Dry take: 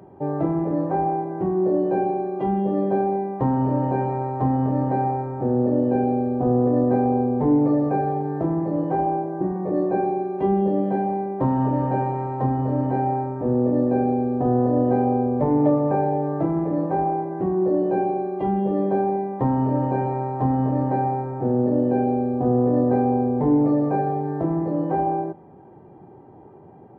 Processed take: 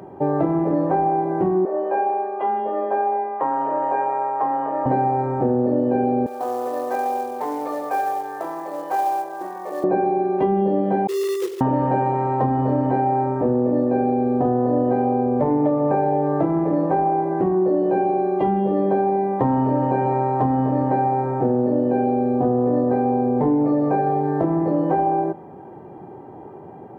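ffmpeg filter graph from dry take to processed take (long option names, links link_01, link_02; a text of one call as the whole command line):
ffmpeg -i in.wav -filter_complex "[0:a]asettb=1/sr,asplit=3[link_01][link_02][link_03];[link_01]atrim=end=1.654[link_04];[link_02]atrim=start=1.65:end=4.86,asetpts=PTS-STARTPTS,afade=type=in:duration=0.004:curve=qsin,afade=type=out:start_time=3.206:duration=0.004:curve=qsin,highpass=680,lowpass=2100,afreqshift=18[link_05];[link_03]atrim=start=4.856[link_06];[link_04][link_05]acrossfade=duration=0.004:curve1=hsin:curve2=qsin[link_07];[link_07][link_06]acrossfade=duration=0.004:curve1=qsin:curve2=hsin,asettb=1/sr,asplit=3[link_08][link_09][link_10];[link_08]atrim=end=6.264[link_11];[link_09]atrim=start=6.26:end=9.84,asetpts=PTS-STARTPTS,afade=type=in:duration=0.004:curve=qsin,afade=type=out:start_time=3.576:duration=0.004:curve=qsin,highpass=940,acrusher=bits=6:mode=log:mix=0:aa=0.000001[link_12];[link_10]atrim=start=9.836[link_13];[link_11][link_12]acrossfade=duration=0.004:curve1=hsin:curve2=qsin[link_14];[link_14][link_13]acrossfade=duration=0.004:curve1=qsin:curve2=hsin,asettb=1/sr,asplit=3[link_15][link_16][link_17];[link_15]atrim=end=11.074[link_18];[link_16]atrim=start=11.07:end=11.61,asetpts=PTS-STARTPTS,afade=type=in:duration=0.004:curve=qsin,afade=type=out:start_time=0.536:duration=0.004:curve=qsin,asuperpass=centerf=410:order=20:qfactor=2.7,acrusher=bits=3:mode=log:mix=0:aa=0.000001[link_19];[link_17]atrim=start=11.606[link_20];[link_18][link_19]acrossfade=duration=0.004:curve1=hsin:curve2=qsin[link_21];[link_21][link_20]acrossfade=duration=0.004:curve1=qsin:curve2=hsin,lowshelf=frequency=180:gain=-8,acompressor=threshold=-25dB:ratio=6,volume=9dB" out.wav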